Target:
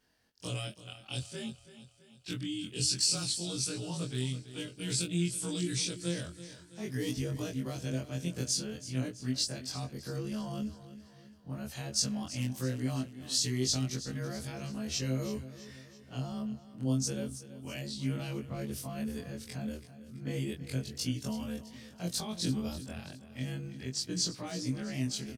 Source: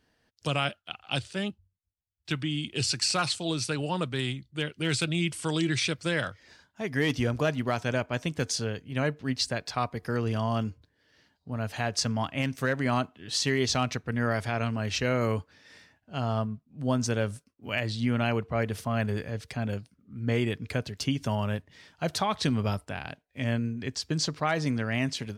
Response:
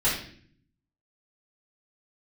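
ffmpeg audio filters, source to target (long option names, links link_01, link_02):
-filter_complex "[0:a]afftfilt=real='re':imag='-im':win_size=2048:overlap=0.75,acrossover=split=440|3800[link_01][link_02][link_03];[link_02]acompressor=threshold=-51dB:ratio=4[link_04];[link_01][link_04][link_03]amix=inputs=3:normalize=0,aemphasis=mode=production:type=cd,aecho=1:1:330|660|990|1320|1650:0.188|0.0942|0.0471|0.0235|0.0118"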